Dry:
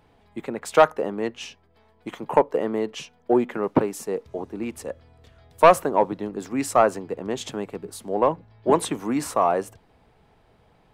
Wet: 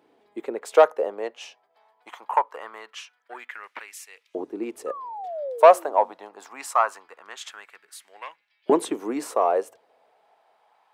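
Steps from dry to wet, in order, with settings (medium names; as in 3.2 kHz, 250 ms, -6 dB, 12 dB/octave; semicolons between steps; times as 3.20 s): painted sound fall, 4.86–6.11 s, 220–1300 Hz -33 dBFS; LFO high-pass saw up 0.23 Hz 310–2600 Hz; trim -4.5 dB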